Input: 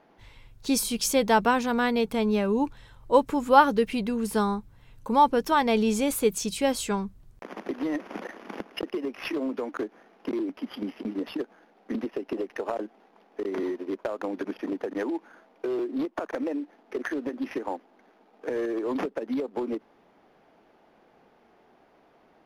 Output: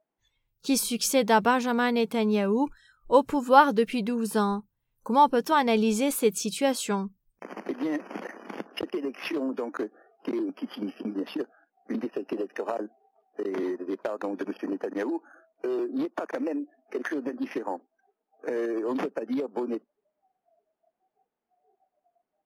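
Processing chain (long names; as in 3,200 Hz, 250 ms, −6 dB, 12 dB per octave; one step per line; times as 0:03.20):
noise reduction from a noise print of the clip's start 27 dB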